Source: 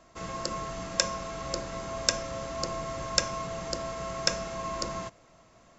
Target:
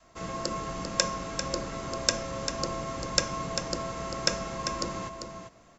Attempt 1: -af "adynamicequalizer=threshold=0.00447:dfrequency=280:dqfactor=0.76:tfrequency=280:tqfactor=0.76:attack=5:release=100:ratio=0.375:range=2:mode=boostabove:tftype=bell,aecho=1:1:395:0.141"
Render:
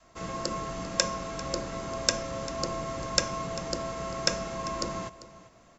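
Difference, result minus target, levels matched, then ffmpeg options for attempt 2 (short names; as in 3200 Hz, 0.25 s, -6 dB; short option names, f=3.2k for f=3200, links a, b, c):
echo-to-direct -9 dB
-af "adynamicequalizer=threshold=0.00447:dfrequency=280:dqfactor=0.76:tfrequency=280:tqfactor=0.76:attack=5:release=100:ratio=0.375:range=2:mode=boostabove:tftype=bell,aecho=1:1:395:0.398"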